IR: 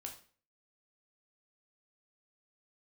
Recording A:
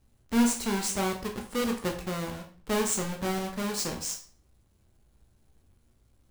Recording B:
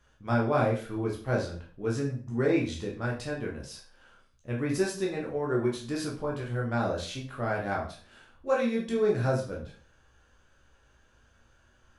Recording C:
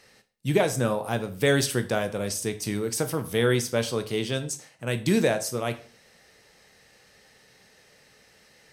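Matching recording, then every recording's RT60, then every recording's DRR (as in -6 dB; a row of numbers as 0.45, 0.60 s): A; 0.45, 0.45, 0.45 s; 1.5, -3.0, 8.5 dB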